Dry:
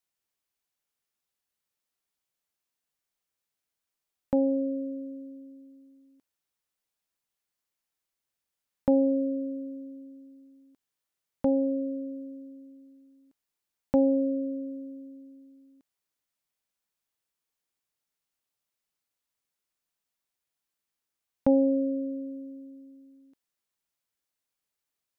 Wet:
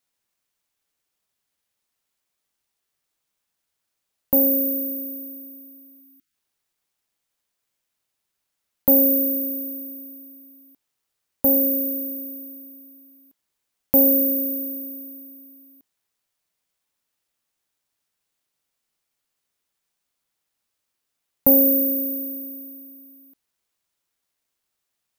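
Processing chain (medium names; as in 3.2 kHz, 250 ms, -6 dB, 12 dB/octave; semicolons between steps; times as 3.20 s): careless resampling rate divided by 3×, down none, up zero stuff; spectral selection erased 6.01–6.34 s, 340–1200 Hz; trim +2 dB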